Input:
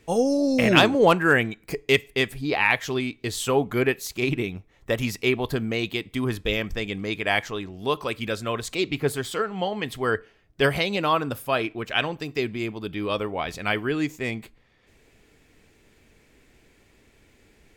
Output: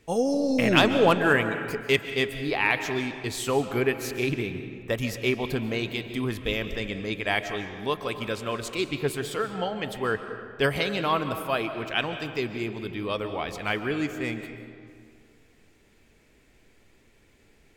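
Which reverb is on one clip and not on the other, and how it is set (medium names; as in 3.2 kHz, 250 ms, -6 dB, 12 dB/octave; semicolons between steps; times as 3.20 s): algorithmic reverb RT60 2.1 s, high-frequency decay 0.6×, pre-delay 100 ms, DRR 8.5 dB; trim -3 dB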